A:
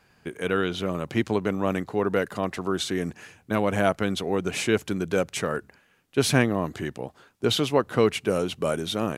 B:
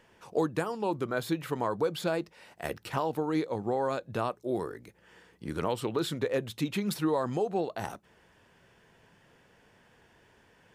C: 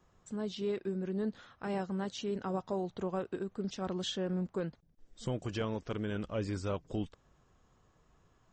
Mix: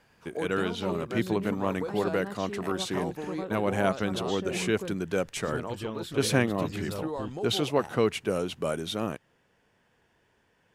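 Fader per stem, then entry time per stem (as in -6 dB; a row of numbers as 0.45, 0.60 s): -4.0, -6.5, -2.0 dB; 0.00, 0.00, 0.25 s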